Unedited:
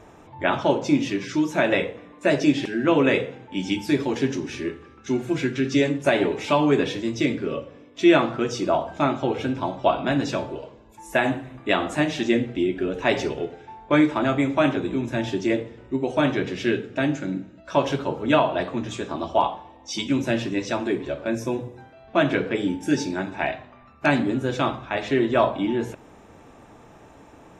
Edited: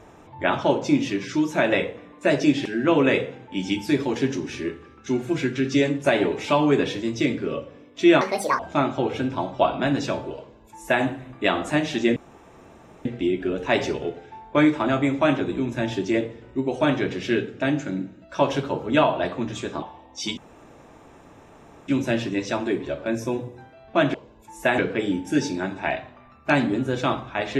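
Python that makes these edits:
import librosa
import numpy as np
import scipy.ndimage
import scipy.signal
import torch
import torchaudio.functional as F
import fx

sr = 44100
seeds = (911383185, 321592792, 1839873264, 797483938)

y = fx.edit(x, sr, fx.speed_span(start_s=8.21, length_s=0.63, speed=1.65),
    fx.duplicate(start_s=10.64, length_s=0.64, to_s=22.34),
    fx.insert_room_tone(at_s=12.41, length_s=0.89),
    fx.cut(start_s=19.18, length_s=0.35),
    fx.insert_room_tone(at_s=20.08, length_s=1.51), tone=tone)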